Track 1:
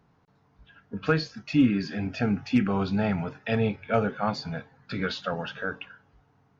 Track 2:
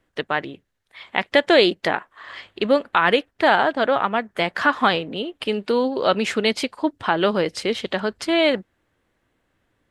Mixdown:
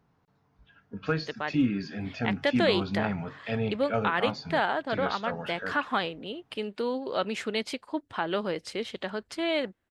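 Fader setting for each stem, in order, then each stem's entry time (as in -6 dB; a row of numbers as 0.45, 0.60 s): -4.5, -10.0 dB; 0.00, 1.10 s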